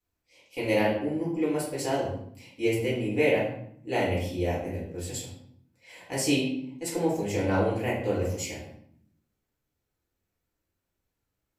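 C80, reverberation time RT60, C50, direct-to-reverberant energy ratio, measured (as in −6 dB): 7.5 dB, 0.65 s, 3.5 dB, −7.5 dB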